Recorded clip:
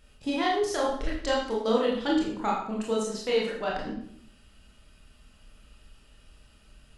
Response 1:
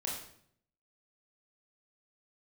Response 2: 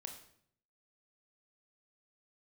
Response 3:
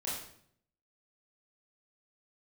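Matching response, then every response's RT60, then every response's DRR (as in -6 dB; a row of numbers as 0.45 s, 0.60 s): 1; 0.65 s, 0.65 s, 0.65 s; -4.0 dB, 3.0 dB, -8.0 dB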